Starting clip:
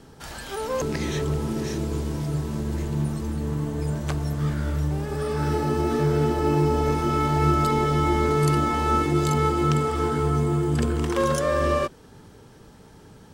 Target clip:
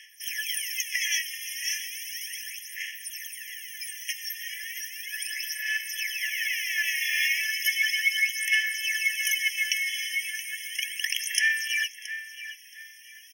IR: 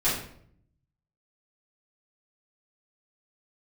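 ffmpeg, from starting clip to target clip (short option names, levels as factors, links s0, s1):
-filter_complex "[0:a]asettb=1/sr,asplit=3[s0][s1][s2];[s0]atrim=end=6.184[s3];[s1]atrim=start=6.18:end=7.41,asetpts=PTS-STARTPTS,afade=t=in:d=0.004:c=qsin,afade=t=out:st=1.226:d=0.004:c=qsin,aeval=exprs='abs(val(0))':c=same[s4];[s2]atrim=start=7.406[s5];[s3][s4]acrossfade=d=0.004:c1=hsin:c2=qsin[s6];[s6][s5]acrossfade=d=0.004:c1=qsin:c2=hsin,aexciter=amount=1.3:drive=2.8:freq=4100,aphaser=in_gain=1:out_gain=1:delay=3.3:decay=0.74:speed=0.35:type=sinusoidal,asplit=2[s7][s8];[s8]adelay=674,lowpass=f=3800:p=1,volume=0.282,asplit=2[s9][s10];[s10]adelay=674,lowpass=f=3800:p=1,volume=0.32,asplit=2[s11][s12];[s12]adelay=674,lowpass=f=3800:p=1,volume=0.32[s13];[s7][s9][s11][s13]amix=inputs=4:normalize=0,afftfilt=real='re*eq(mod(floor(b*sr/1024/1700),2),1)':imag='im*eq(mod(floor(b*sr/1024/1700),2),1)':win_size=1024:overlap=0.75,volume=2.37"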